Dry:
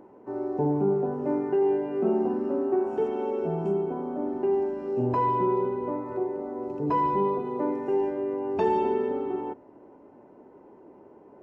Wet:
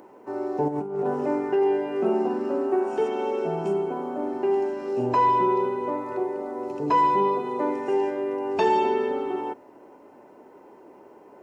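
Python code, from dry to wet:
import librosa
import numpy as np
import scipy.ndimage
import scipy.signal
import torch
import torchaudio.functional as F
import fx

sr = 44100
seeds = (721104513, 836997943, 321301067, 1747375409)

y = fx.high_shelf(x, sr, hz=2500.0, db=11.5)
y = fx.over_compress(y, sr, threshold_db=-27.0, ratio=-0.5, at=(0.68, 1.26))
y = fx.low_shelf(y, sr, hz=260.0, db=-10.5)
y = F.gain(torch.from_numpy(y), 4.5).numpy()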